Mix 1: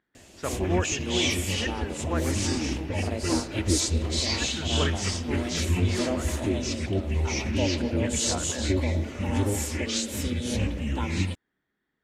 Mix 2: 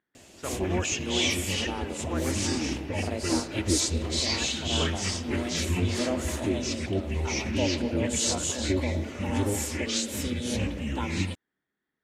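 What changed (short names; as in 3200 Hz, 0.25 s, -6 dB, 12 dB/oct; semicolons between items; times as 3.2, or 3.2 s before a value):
speech -4.5 dB; master: add low shelf 75 Hz -8.5 dB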